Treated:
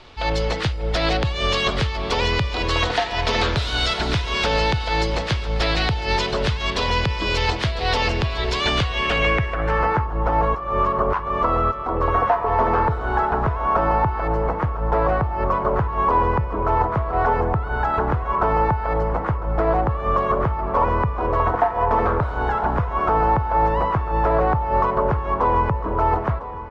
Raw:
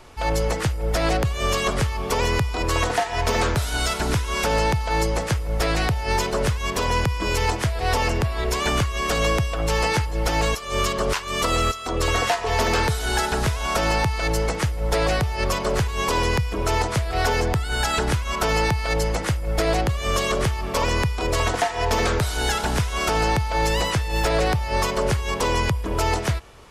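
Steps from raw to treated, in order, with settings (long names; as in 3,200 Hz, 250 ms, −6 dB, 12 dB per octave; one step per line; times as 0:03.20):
repeating echo 1,002 ms, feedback 52%, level −15 dB
low-pass filter sweep 3,900 Hz → 1,100 Hz, 0:08.78–0:10.06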